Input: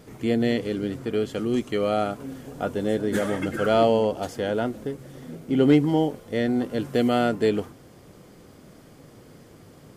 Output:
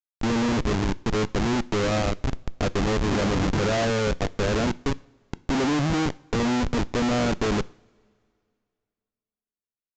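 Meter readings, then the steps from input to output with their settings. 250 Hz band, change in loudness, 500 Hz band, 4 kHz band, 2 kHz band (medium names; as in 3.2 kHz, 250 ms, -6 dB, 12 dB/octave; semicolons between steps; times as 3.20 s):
-1.0 dB, -1.0 dB, -3.5 dB, +4.0 dB, +3.5 dB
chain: in parallel at +1.5 dB: compression 4:1, threshold -32 dBFS, peak gain reduction 16 dB; on the sum: Schmitt trigger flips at -23 dBFS; two-slope reverb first 0.48 s, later 2.3 s, from -18 dB, DRR 18.5 dB; resampled via 16 kHz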